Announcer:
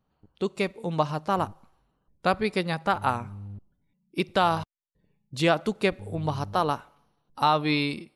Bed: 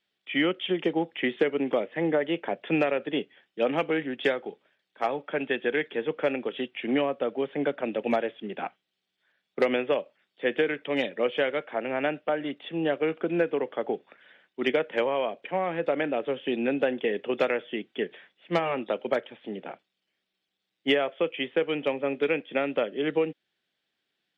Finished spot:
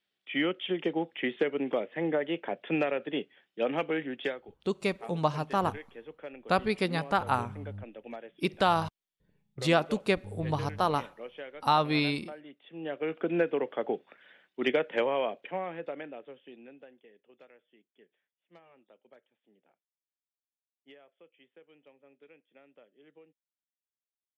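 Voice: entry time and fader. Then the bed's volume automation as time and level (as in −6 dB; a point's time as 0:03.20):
4.25 s, −2.5 dB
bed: 0:04.17 −4 dB
0:04.55 −17 dB
0:12.58 −17 dB
0:13.23 −2 dB
0:15.30 −2 dB
0:17.12 −31.5 dB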